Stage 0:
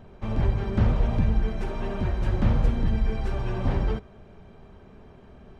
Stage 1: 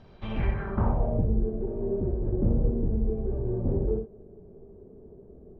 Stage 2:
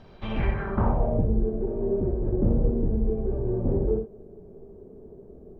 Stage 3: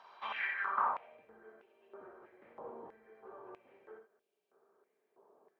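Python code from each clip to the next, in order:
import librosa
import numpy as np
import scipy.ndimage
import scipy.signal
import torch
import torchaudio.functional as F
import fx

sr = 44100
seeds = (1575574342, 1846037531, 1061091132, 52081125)

y1 = fx.filter_sweep_lowpass(x, sr, from_hz=4900.0, to_hz=420.0, start_s=0.08, end_s=1.26, q=3.1)
y1 = fx.room_early_taps(y1, sr, ms=(60, 78), db=(-8.5, -11.0))
y1 = F.gain(torch.from_numpy(y1), -4.5).numpy()
y2 = fx.peak_eq(y1, sr, hz=78.0, db=-3.5, octaves=2.6)
y2 = F.gain(torch.from_numpy(y2), 4.0).numpy()
y3 = fx.filter_held_highpass(y2, sr, hz=3.1, low_hz=1000.0, high_hz=2800.0)
y3 = F.gain(torch.from_numpy(y3), -5.5).numpy()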